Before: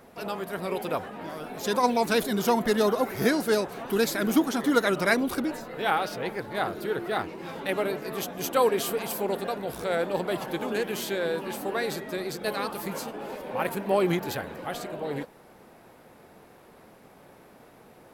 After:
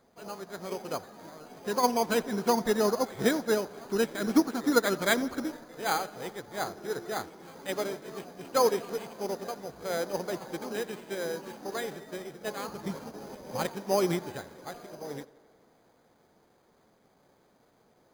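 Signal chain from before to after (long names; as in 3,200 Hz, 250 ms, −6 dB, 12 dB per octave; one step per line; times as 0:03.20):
0:12.68–0:13.66: parametric band 81 Hz +11.5 dB 2.6 octaves
bad sample-rate conversion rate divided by 8×, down filtered, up hold
tape delay 85 ms, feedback 85%, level −17 dB, low-pass 4,800 Hz
expander for the loud parts 1.5 to 1, over −41 dBFS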